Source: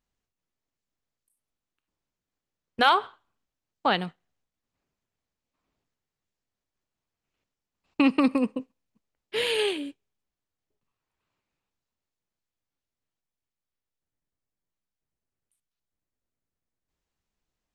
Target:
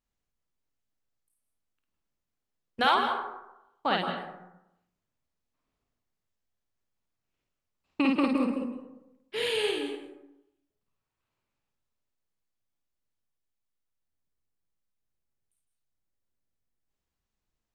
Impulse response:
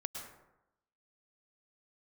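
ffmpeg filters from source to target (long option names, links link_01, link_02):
-filter_complex "[0:a]asplit=2[link_01][link_02];[1:a]atrim=start_sample=2205,lowshelf=frequency=130:gain=5.5,adelay=52[link_03];[link_02][link_03]afir=irnorm=-1:irlink=0,volume=-0.5dB[link_04];[link_01][link_04]amix=inputs=2:normalize=0,volume=-5dB"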